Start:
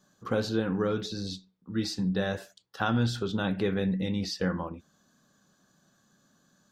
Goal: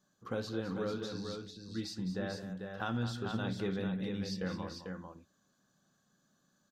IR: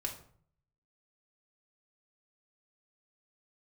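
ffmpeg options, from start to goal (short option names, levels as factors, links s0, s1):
-filter_complex "[0:a]asettb=1/sr,asplit=3[s0][s1][s2];[s0]atrim=end=2.124[s3];[s1]atrim=start=2.12:end=2.8,asetpts=PTS-STARTPTS,afade=t=in:d=0.004:c=qsin,afade=t=out:st=0.676:d=0.004:c=qsin,acrossover=split=3000[s4][s5];[s5]acompressor=threshold=0.001:ratio=4:attack=1:release=60[s6];[s4][s6]amix=inputs=2:normalize=0[s7];[s2]atrim=start=2.796[s8];[s3][s7]acrossfade=d=0.004:c1=hsin:c2=qsin[s9];[s9][s8]acrossfade=d=0.004:c1=qsin:c2=hsin,asplit=2[s10][s11];[s11]aecho=0:1:211|445:0.282|0.531[s12];[s10][s12]amix=inputs=2:normalize=0,volume=0.355"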